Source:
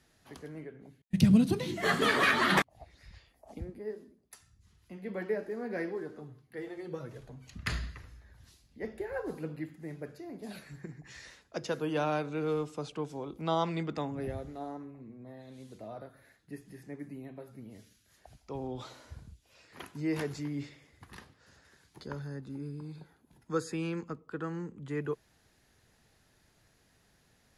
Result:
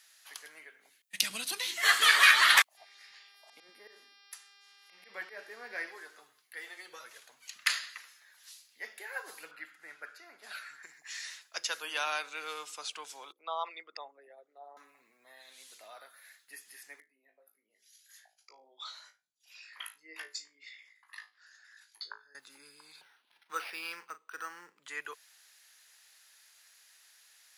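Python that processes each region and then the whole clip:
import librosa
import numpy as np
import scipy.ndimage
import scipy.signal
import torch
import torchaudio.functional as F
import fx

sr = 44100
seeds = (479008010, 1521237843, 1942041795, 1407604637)

y = fx.tilt_eq(x, sr, slope=-2.0, at=(2.76, 5.86), fade=0.02)
y = fx.auto_swell(y, sr, attack_ms=101.0, at=(2.76, 5.86), fade=0.02)
y = fx.dmg_buzz(y, sr, base_hz=400.0, harmonics=14, level_db=-65.0, tilt_db=-4, odd_only=False, at=(2.76, 5.86), fade=0.02)
y = fx.chain(y, sr, fx.lowpass(hz=2700.0, slope=6),
    fx.peak_eq(hz=1400.0, db=13.5, octaves=0.31), at=(9.51, 10.83))
y = fx.chain(y, sr, fx.envelope_sharpen(power=2.0),
    fx.highpass(hz=510.0, slope=12), at=(13.32, 14.77))
y = fx.chain(y, sr, fx.envelope_sharpen(power=2.0),
    fx.highpass(hz=1400.0, slope=6),
    fx.room_flutter(wall_m=3.2, rt60_s=0.22), at=(17.0, 22.35))
y = fx.chain(y, sr, fx.doubler(ms=40.0, db=-13.0),
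    fx.resample_linear(factor=6), at=(23.01, 24.84))
y = scipy.signal.sosfilt(scipy.signal.butter(2, 1400.0, 'highpass', fs=sr, output='sos'), y)
y = fx.tilt_eq(y, sr, slope=2.0)
y = y * librosa.db_to_amplitude(6.0)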